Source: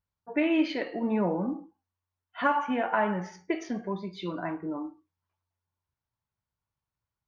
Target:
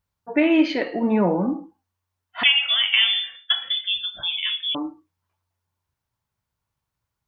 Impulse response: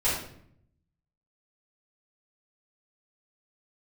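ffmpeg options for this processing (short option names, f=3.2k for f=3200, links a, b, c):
-filter_complex "[0:a]asettb=1/sr,asplit=3[a][b][c];[a]atrim=end=2.434[d];[b]atrim=start=2.43:end=4.75,asetpts=PTS-STARTPTS,afade=t=in:d=0.004:c=qsin,afade=t=out:st=2.316:d=0.004:c=qsin,lowpass=f=3.1k:t=q:w=0.5098,lowpass=f=3.1k:t=q:w=0.6013,lowpass=f=3.1k:t=q:w=0.9,lowpass=f=3.1k:t=q:w=2.563,afreqshift=-3700[e];[c]atrim=start=4.746[f];[d][e]acrossfade=d=0.004:c1=hsin:c2=qsin[g];[g][f]acrossfade=d=0.004:c1=qsin:c2=hsin,volume=7.5dB"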